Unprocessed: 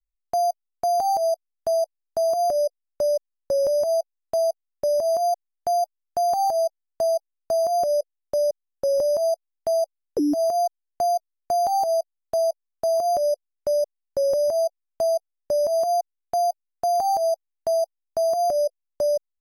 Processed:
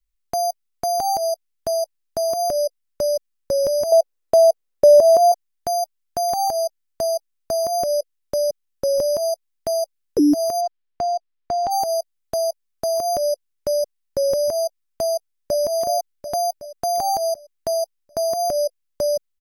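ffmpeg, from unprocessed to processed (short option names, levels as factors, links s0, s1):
-filter_complex "[0:a]asettb=1/sr,asplit=3[s0][s1][s2];[s0]atrim=end=3.924[s3];[s1]atrim=start=3.92:end=5.32,asetpts=PTS-STARTPTS,afade=t=in:d=0.004:c=qsin,afade=t=out:st=1.396:d=0.004:c=qsin,equalizer=f=530:w=0.95:g=11.5[s4];[s2]atrim=start=5.316[s5];[s3][s4]acrossfade=d=0.004:c1=hsin:c2=qsin[s6];[s6][s5]acrossfade=d=0.004:c1=qsin:c2=hsin,asplit=3[s7][s8][s9];[s7]afade=t=out:st=10.6:d=0.02[s10];[s8]lowpass=3600,afade=t=in:st=10.6:d=0.02,afade=t=out:st=11.7:d=0.02[s11];[s9]afade=t=in:st=11.7:d=0.02[s12];[s10][s11][s12]amix=inputs=3:normalize=0,asplit=2[s13][s14];[s14]afade=t=in:st=15.14:d=0.01,afade=t=out:st=15.61:d=0.01,aecho=0:1:370|740|1110|1480|1850|2220|2590|2960:0.473151|0.283891|0.170334|0.102201|0.0613204|0.0367922|0.0220753|0.0132452[s15];[s13][s15]amix=inputs=2:normalize=0,equalizer=f=690:t=o:w=1.1:g=-8.5,volume=2.51"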